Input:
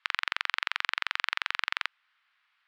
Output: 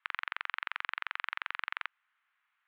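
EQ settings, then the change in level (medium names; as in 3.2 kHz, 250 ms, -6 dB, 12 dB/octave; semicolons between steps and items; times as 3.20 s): high-pass 640 Hz 12 dB/octave; distance through air 470 m; -1.5 dB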